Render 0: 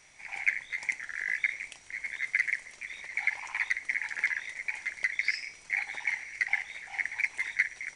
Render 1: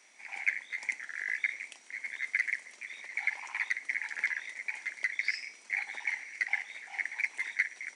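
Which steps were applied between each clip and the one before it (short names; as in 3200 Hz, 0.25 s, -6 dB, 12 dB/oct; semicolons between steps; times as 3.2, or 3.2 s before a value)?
steep high-pass 200 Hz 48 dB/oct; gain -2.5 dB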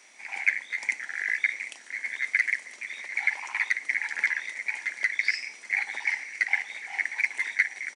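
echo 0.773 s -16 dB; gain +6 dB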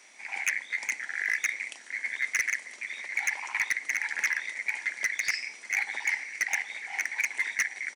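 wavefolder -18 dBFS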